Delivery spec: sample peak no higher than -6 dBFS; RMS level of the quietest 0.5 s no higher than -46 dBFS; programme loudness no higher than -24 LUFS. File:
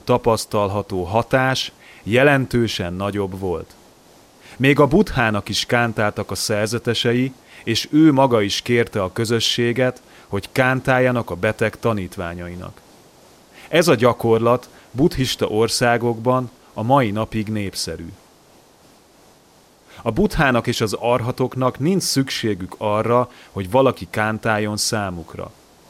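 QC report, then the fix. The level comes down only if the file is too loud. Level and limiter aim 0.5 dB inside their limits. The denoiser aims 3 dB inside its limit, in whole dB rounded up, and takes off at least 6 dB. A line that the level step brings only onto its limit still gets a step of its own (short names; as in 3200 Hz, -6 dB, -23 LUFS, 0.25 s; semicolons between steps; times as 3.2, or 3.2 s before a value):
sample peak -3.0 dBFS: fail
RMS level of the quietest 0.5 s -52 dBFS: OK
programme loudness -19.0 LUFS: fail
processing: gain -5.5 dB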